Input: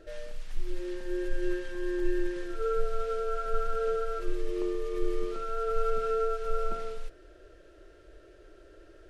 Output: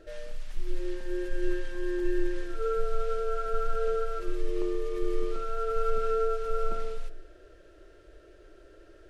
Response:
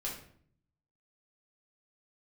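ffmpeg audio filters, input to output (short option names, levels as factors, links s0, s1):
-filter_complex "[0:a]asplit=2[s0][s1];[1:a]atrim=start_sample=2205,adelay=114[s2];[s1][s2]afir=irnorm=-1:irlink=0,volume=0.106[s3];[s0][s3]amix=inputs=2:normalize=0"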